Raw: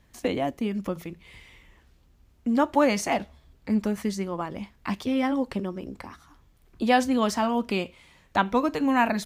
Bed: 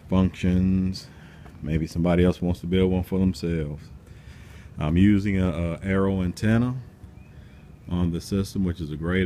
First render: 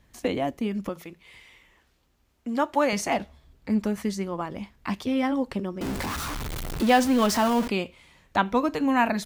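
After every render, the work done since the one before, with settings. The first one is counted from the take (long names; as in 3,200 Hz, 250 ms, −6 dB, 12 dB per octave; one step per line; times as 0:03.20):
0:00.89–0:02.93: low-shelf EQ 240 Hz −11.5 dB
0:05.81–0:07.68: converter with a step at zero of −26 dBFS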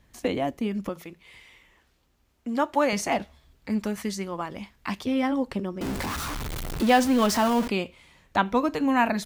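0:03.22–0:04.99: tilt shelving filter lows −3 dB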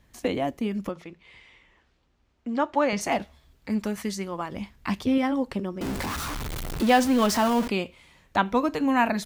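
0:00.91–0:03.01: high-frequency loss of the air 93 metres
0:04.52–0:05.18: low-shelf EQ 270 Hz +7 dB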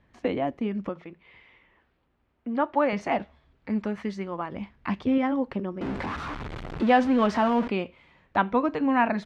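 low-pass filter 2,400 Hz 12 dB per octave
low-shelf EQ 63 Hz −9 dB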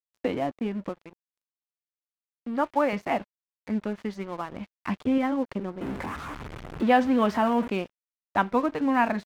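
dead-zone distortion −44 dBFS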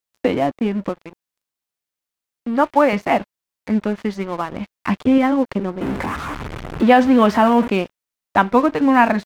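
level +9.5 dB
brickwall limiter −2 dBFS, peak gain reduction 3 dB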